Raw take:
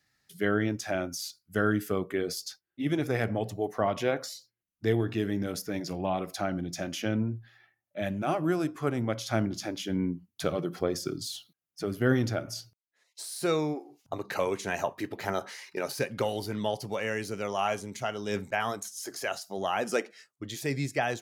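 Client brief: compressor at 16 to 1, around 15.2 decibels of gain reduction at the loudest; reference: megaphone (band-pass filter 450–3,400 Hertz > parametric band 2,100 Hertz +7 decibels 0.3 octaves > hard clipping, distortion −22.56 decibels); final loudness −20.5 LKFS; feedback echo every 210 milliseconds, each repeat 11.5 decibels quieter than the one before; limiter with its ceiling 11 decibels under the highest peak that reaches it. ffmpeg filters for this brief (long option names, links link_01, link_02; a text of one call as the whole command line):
ffmpeg -i in.wav -af "acompressor=threshold=-36dB:ratio=16,alimiter=level_in=9.5dB:limit=-24dB:level=0:latency=1,volume=-9.5dB,highpass=450,lowpass=3400,equalizer=frequency=2100:width_type=o:width=0.3:gain=7,aecho=1:1:210|420|630:0.266|0.0718|0.0194,asoftclip=type=hard:threshold=-37.5dB,volume=27.5dB" out.wav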